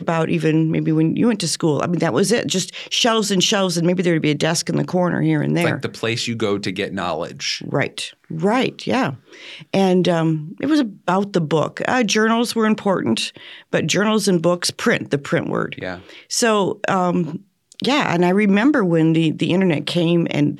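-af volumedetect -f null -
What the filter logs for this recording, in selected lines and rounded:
mean_volume: -18.8 dB
max_volume: -1.8 dB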